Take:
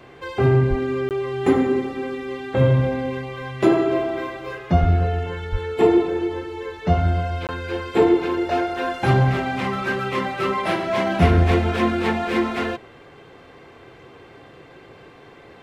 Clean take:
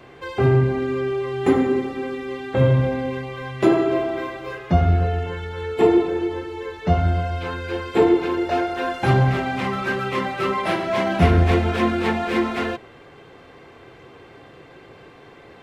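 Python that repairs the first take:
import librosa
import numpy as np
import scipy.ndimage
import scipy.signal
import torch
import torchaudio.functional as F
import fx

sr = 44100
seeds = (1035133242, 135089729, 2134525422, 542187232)

y = fx.highpass(x, sr, hz=140.0, slope=24, at=(0.69, 0.81), fade=0.02)
y = fx.highpass(y, sr, hz=140.0, slope=24, at=(4.8, 4.92), fade=0.02)
y = fx.highpass(y, sr, hz=140.0, slope=24, at=(5.51, 5.63), fade=0.02)
y = fx.fix_interpolate(y, sr, at_s=(1.09, 7.47), length_ms=18.0)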